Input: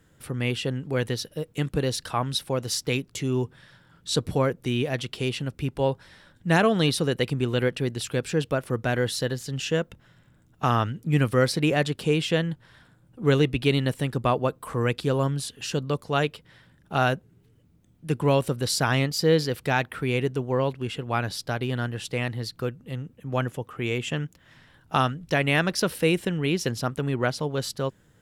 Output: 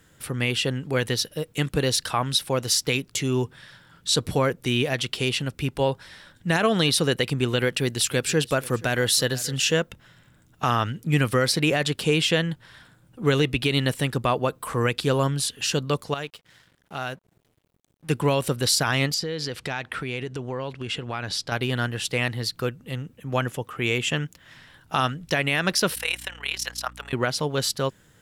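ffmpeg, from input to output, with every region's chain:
-filter_complex "[0:a]asettb=1/sr,asplit=3[a][b][c];[a]atrim=end=7.634[d];[b]atrim=start=7.63:end=9.74,asetpts=PTS-STARTPTS,afade=t=in:d=0.004:c=qsin,afade=t=out:st=2.106:d=0.004:c=qsin,highshelf=f=5.3k:g=5.5,aecho=1:1:477:0.0841,atrim=end_sample=93051[e];[c]atrim=start=9.736[f];[d][e]acrossfade=d=0.004:c1=hsin:c2=qsin[g];[g][f]acrossfade=d=0.004:c1=qsin:c2=hsin,asettb=1/sr,asplit=3[h][i][j];[h]atrim=end=16.144[k];[i]atrim=start=16.14:end=18.09,asetpts=PTS-STARTPTS,afade=t=in:d=0.004:c=qsin,afade=t=out:st=1.946:d=0.004:c=qsin,acompressor=threshold=-52dB:ratio=1.5:attack=3.2:release=140:knee=1:detection=peak,aeval=exprs='sgn(val(0))*max(abs(val(0))-0.00126,0)':c=same[l];[j]atrim=start=18.086[m];[k][l]acrossfade=d=0.004:c1=hsin:c2=qsin[n];[n][m]acrossfade=d=0.004:c1=qsin:c2=hsin,asettb=1/sr,asplit=3[o][p][q];[o]atrim=end=19.144[r];[p]atrim=start=19.14:end=21.52,asetpts=PTS-STARTPTS,afade=t=in:d=0.004:c=qsin,afade=t=out:st=2.376:d=0.004:c=qsin,acompressor=threshold=-29dB:ratio=6:attack=3.2:release=140:knee=1:detection=peak,lowpass=7.7k[s];[q]atrim=start=21.516[t];[r][s]acrossfade=d=0.004:c1=hsin:c2=qsin[u];[u][t]acrossfade=d=0.004:c1=qsin:c2=hsin,asettb=1/sr,asplit=3[v][w][x];[v]atrim=end=25.954[y];[w]atrim=start=25.95:end=27.13,asetpts=PTS-STARTPTS,afade=t=in:d=0.004:c=qsin,afade=t=out:st=1.176:d=0.004:c=qsin,highpass=f=710:w=0.5412,highpass=f=710:w=1.3066,tremolo=f=37:d=0.824,aeval=exprs='val(0)+0.00447*(sin(2*PI*60*n/s)+sin(2*PI*2*60*n/s)/2+sin(2*PI*3*60*n/s)/3+sin(2*PI*4*60*n/s)/4+sin(2*PI*5*60*n/s)/5)':c=same[z];[x]atrim=start=27.126[aa];[y][z]acrossfade=d=0.004:c1=hsin:c2=qsin[ab];[ab][aa]acrossfade=d=0.004:c1=qsin:c2=hsin,tiltshelf=f=1.1k:g=-3.5,alimiter=limit=-15dB:level=0:latency=1:release=81,volume=4.5dB"

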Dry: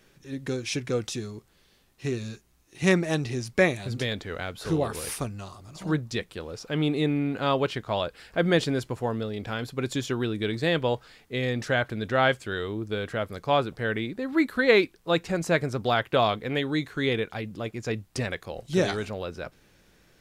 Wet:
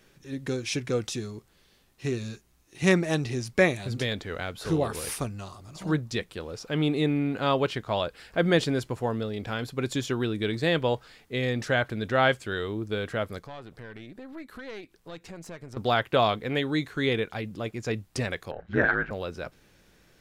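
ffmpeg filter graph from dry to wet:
-filter_complex "[0:a]asettb=1/sr,asplit=3[a][b][c];[a]atrim=end=13.394[d];[b]atrim=start=13.39:end=15.77,asetpts=PTS-STARTPTS,afade=t=in:d=0.004:c=qsin,afade=t=out:st=2.376:d=0.004:c=qsin,acompressor=threshold=-40dB:ratio=3:attack=3.2:release=140:knee=1:detection=peak,aeval=exprs='(tanh(39.8*val(0)+0.6)-tanh(0.6))/39.8':c=same[e];[c]atrim=start=15.766[f];[d][e]acrossfade=d=0.004:c1=hsin:c2=qsin[g];[g][f]acrossfade=d=0.004:c1=qsin:c2=hsin,asettb=1/sr,asplit=3[h][i][j];[h]atrim=end=18.514[k];[i]atrim=start=18.51:end=19.11,asetpts=PTS-STARTPTS,afade=t=in:d=0.004:c=qsin,afade=t=out:st=0.596:d=0.004:c=qsin,aeval=exprs='val(0)*sin(2*PI*55*n/s)':c=same,lowpass=f=1.6k:t=q:w=7.9[l];[j]atrim=start=19.106[m];[k][l]acrossfade=d=0.004:c1=hsin:c2=qsin[n];[n][m]acrossfade=d=0.004:c1=qsin:c2=hsin"

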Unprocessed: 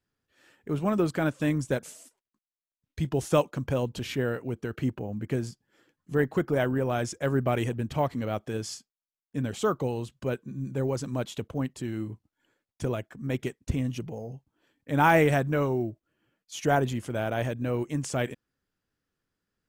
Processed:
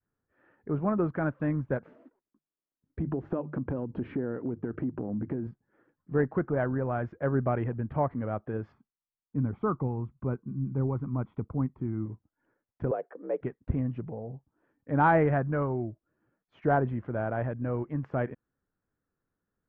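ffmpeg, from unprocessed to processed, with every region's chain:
-filter_complex "[0:a]asettb=1/sr,asplit=3[a][b][c];[a]atrim=end=1.854[d];[b]atrim=start=1.85:end=5.47,asetpts=PTS-STARTPTS,afade=t=in:d=0.004:c=qsin,afade=t=out:st=3.616:d=0.004:c=qsin,equalizer=f=290:w=1:g=12,bandreject=f=50:t=h:w=6,bandreject=f=100:t=h:w=6,bandreject=f=150:t=h:w=6,acompressor=threshold=-26dB:ratio=6:attack=3.2:release=140:knee=1:detection=peak[e];[c]atrim=start=5.466[f];[d][e]acrossfade=d=0.004:c1=hsin:c2=qsin[g];[g][f]acrossfade=d=0.004:c1=qsin:c2=hsin,asettb=1/sr,asplit=3[h][i][j];[h]atrim=end=8.724[k];[i]atrim=start=8.72:end=12.06,asetpts=PTS-STARTPTS,afade=t=in:d=0.004:c=qsin,afade=t=out:st=3.336:d=0.004:c=qsin,lowpass=f=1k:p=1,aecho=1:1:0.9:0.55,atrim=end_sample=147294[l];[j]atrim=start=12.056[m];[k][l]acrossfade=d=0.004:c1=hsin:c2=qsin[n];[n][m]acrossfade=d=0.004:c1=qsin:c2=hsin,asettb=1/sr,asplit=3[o][p][q];[o]atrim=end=12.914[r];[p]atrim=start=12.91:end=13.41,asetpts=PTS-STARTPTS,afade=t=in:d=0.004:c=qsin,afade=t=out:st=0.496:d=0.004:c=qsin,acompressor=threshold=-34dB:ratio=2:attack=3.2:release=140:knee=1:detection=peak,afreqshift=55,highpass=f=490:t=q:w=6.1[s];[q]atrim=start=13.406[t];[r][s]acrossfade=d=0.004:c1=hsin:c2=qsin[u];[u][t]acrossfade=d=0.004:c1=qsin:c2=hsin,lowpass=f=1.6k:w=0.5412,lowpass=f=1.6k:w=1.3066,adynamicequalizer=threshold=0.0158:dfrequency=390:dqfactor=0.85:tfrequency=390:tqfactor=0.85:attack=5:release=100:ratio=0.375:range=2.5:mode=cutabove:tftype=bell,acontrast=26,volume=-5.5dB"

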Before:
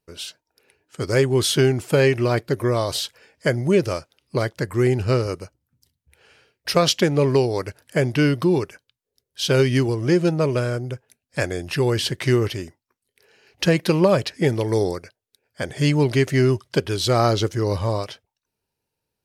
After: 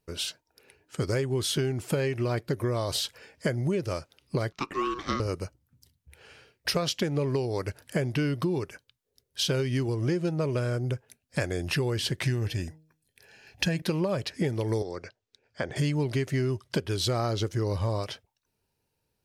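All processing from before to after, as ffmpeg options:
-filter_complex "[0:a]asettb=1/sr,asplit=3[a][b][c];[a]atrim=end=4.524[d];[b]atrim=start=4.52:end=5.2,asetpts=PTS-STARTPTS,afade=t=in:d=0.004:c=qsin,afade=t=out:st=0.676:d=0.004:c=qsin,highpass=f=360:w=0.5412,highpass=f=360:w=1.3066,highshelf=f=7k:t=q:w=1.5:g=-12.5,aeval=exprs='val(0)*sin(2*PI*730*n/s)':c=same[e];[c]atrim=start=5.196[f];[d][e]acrossfade=d=0.004:c1=hsin:c2=qsin[g];[g][f]acrossfade=d=0.004:c1=qsin:c2=hsin,asettb=1/sr,asplit=3[h][i][j];[h]atrim=end=12.234[k];[i]atrim=start=12.23:end=13.82,asetpts=PTS-STARTPTS,afade=t=in:d=0.004:c=qsin,afade=t=out:st=1.586:d=0.004:c=qsin,equalizer=f=1k:w=2.9:g=-5.5,aecho=1:1:1.2:0.51,atrim=end_sample=70119,bandreject=f=156.7:t=h:w=4,bandreject=f=313.4:t=h:w=4,bandreject=f=470.1:t=h:w=4,bandreject=f=626.8:t=h:w=4[l];[j]atrim=start=13.816[m];[k][l]acrossfade=d=0.004:c1=hsin:c2=qsin[n];[n][m]acrossfade=d=0.004:c1=qsin:c2=hsin,asettb=1/sr,asplit=3[o][p][q];[o]atrim=end=14.824[r];[p]atrim=start=14.82:end=15.76,asetpts=PTS-STARTPTS,afade=t=in:d=0.004:c=qsin,afade=t=out:st=0.936:d=0.004:c=qsin,lowpass=f=6.9k:w=0.5412,lowpass=f=6.9k:w=1.3066,acrossover=split=300|2200[s][t][u];[s]acompressor=threshold=-42dB:ratio=4[v];[t]acompressor=threshold=-28dB:ratio=4[w];[u]acompressor=threshold=-49dB:ratio=4[x];[v][w][x]amix=inputs=3:normalize=0[y];[q]atrim=start=15.756[z];[r][y]acrossfade=d=0.004:c1=hsin:c2=qsin[aa];[aa][z]acrossfade=d=0.004:c1=qsin:c2=hsin,lowshelf=f=160:g=4.5,acompressor=threshold=-27dB:ratio=6,volume=1.5dB"

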